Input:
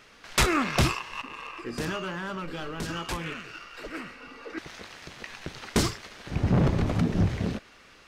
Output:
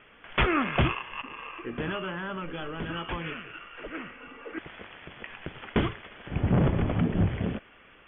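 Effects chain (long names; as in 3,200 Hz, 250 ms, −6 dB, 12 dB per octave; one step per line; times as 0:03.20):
Chebyshev low-pass filter 3,400 Hz, order 10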